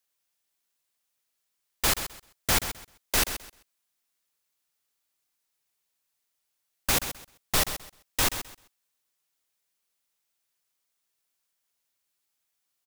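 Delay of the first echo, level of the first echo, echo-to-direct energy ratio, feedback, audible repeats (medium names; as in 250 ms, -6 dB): 130 ms, -10.5 dB, -10.5 dB, 21%, 2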